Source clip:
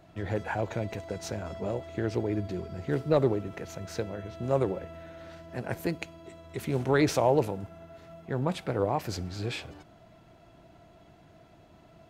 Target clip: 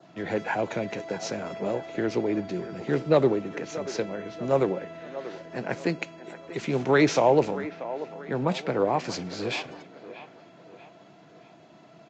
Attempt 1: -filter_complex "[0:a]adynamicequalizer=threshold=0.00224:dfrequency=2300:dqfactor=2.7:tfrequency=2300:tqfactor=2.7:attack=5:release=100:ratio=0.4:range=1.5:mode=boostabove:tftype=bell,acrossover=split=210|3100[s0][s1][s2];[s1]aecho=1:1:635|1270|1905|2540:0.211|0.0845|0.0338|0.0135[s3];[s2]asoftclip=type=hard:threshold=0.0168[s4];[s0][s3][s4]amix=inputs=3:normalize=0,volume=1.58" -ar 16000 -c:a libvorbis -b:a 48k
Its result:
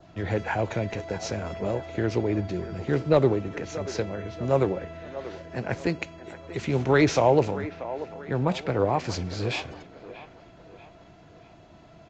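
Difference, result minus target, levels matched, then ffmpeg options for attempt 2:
125 Hz band +5.5 dB
-filter_complex "[0:a]adynamicequalizer=threshold=0.00224:dfrequency=2300:dqfactor=2.7:tfrequency=2300:tqfactor=2.7:attack=5:release=100:ratio=0.4:range=1.5:mode=boostabove:tftype=bell,highpass=f=150:w=0.5412,highpass=f=150:w=1.3066,acrossover=split=210|3100[s0][s1][s2];[s1]aecho=1:1:635|1270|1905|2540:0.211|0.0845|0.0338|0.0135[s3];[s2]asoftclip=type=hard:threshold=0.0168[s4];[s0][s3][s4]amix=inputs=3:normalize=0,volume=1.58" -ar 16000 -c:a libvorbis -b:a 48k

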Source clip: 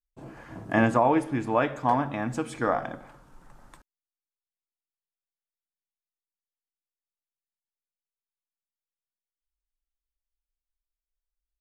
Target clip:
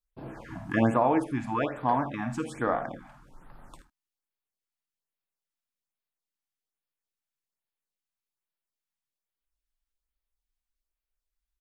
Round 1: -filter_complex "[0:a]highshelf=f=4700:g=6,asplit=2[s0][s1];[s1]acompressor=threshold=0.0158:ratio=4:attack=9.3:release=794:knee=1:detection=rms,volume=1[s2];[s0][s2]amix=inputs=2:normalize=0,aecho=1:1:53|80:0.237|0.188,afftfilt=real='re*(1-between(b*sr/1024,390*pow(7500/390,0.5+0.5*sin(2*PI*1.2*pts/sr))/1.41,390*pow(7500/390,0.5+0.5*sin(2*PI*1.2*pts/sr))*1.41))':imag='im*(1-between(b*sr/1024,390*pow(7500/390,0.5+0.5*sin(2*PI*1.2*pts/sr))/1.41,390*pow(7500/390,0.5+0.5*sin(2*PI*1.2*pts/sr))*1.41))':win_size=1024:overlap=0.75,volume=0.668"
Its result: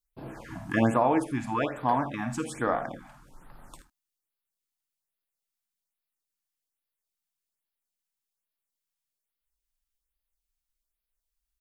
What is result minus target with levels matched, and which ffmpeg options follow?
8 kHz band +6.5 dB
-filter_complex "[0:a]highshelf=f=4700:g=-3,asplit=2[s0][s1];[s1]acompressor=threshold=0.0158:ratio=4:attack=9.3:release=794:knee=1:detection=rms,volume=1[s2];[s0][s2]amix=inputs=2:normalize=0,aecho=1:1:53|80:0.237|0.188,afftfilt=real='re*(1-between(b*sr/1024,390*pow(7500/390,0.5+0.5*sin(2*PI*1.2*pts/sr))/1.41,390*pow(7500/390,0.5+0.5*sin(2*PI*1.2*pts/sr))*1.41))':imag='im*(1-between(b*sr/1024,390*pow(7500/390,0.5+0.5*sin(2*PI*1.2*pts/sr))/1.41,390*pow(7500/390,0.5+0.5*sin(2*PI*1.2*pts/sr))*1.41))':win_size=1024:overlap=0.75,volume=0.668"

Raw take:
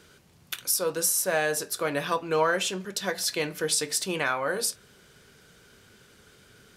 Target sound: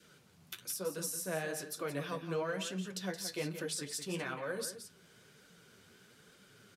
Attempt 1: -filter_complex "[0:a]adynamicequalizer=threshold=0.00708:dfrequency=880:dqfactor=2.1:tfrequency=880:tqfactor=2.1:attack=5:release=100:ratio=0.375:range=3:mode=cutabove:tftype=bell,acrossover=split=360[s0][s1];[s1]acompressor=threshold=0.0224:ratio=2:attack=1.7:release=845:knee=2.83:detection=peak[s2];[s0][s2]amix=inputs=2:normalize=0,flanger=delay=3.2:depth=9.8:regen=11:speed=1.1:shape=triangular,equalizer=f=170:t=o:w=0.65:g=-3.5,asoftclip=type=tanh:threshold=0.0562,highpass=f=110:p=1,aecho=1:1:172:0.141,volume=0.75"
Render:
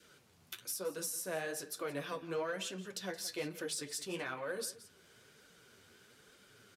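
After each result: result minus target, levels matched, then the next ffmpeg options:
125 Hz band -6.0 dB; saturation: distortion +9 dB; echo-to-direct -6.5 dB
-filter_complex "[0:a]adynamicequalizer=threshold=0.00708:dfrequency=880:dqfactor=2.1:tfrequency=880:tqfactor=2.1:attack=5:release=100:ratio=0.375:range=3:mode=cutabove:tftype=bell,acrossover=split=360[s0][s1];[s1]acompressor=threshold=0.0224:ratio=2:attack=1.7:release=845:knee=2.83:detection=peak[s2];[s0][s2]amix=inputs=2:normalize=0,flanger=delay=3.2:depth=9.8:regen=11:speed=1.1:shape=triangular,equalizer=f=170:t=o:w=0.65:g=4.5,asoftclip=type=tanh:threshold=0.0562,highpass=f=110:p=1,aecho=1:1:172:0.141,volume=0.75"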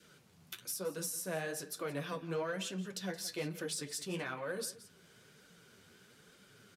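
saturation: distortion +10 dB; echo-to-direct -6.5 dB
-filter_complex "[0:a]adynamicequalizer=threshold=0.00708:dfrequency=880:dqfactor=2.1:tfrequency=880:tqfactor=2.1:attack=5:release=100:ratio=0.375:range=3:mode=cutabove:tftype=bell,acrossover=split=360[s0][s1];[s1]acompressor=threshold=0.0224:ratio=2:attack=1.7:release=845:knee=2.83:detection=peak[s2];[s0][s2]amix=inputs=2:normalize=0,flanger=delay=3.2:depth=9.8:regen=11:speed=1.1:shape=triangular,equalizer=f=170:t=o:w=0.65:g=4.5,asoftclip=type=tanh:threshold=0.112,highpass=f=110:p=1,aecho=1:1:172:0.141,volume=0.75"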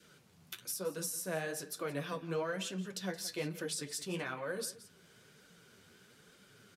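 echo-to-direct -6.5 dB
-filter_complex "[0:a]adynamicequalizer=threshold=0.00708:dfrequency=880:dqfactor=2.1:tfrequency=880:tqfactor=2.1:attack=5:release=100:ratio=0.375:range=3:mode=cutabove:tftype=bell,acrossover=split=360[s0][s1];[s1]acompressor=threshold=0.0224:ratio=2:attack=1.7:release=845:knee=2.83:detection=peak[s2];[s0][s2]amix=inputs=2:normalize=0,flanger=delay=3.2:depth=9.8:regen=11:speed=1.1:shape=triangular,equalizer=f=170:t=o:w=0.65:g=4.5,asoftclip=type=tanh:threshold=0.112,highpass=f=110:p=1,aecho=1:1:172:0.299,volume=0.75"

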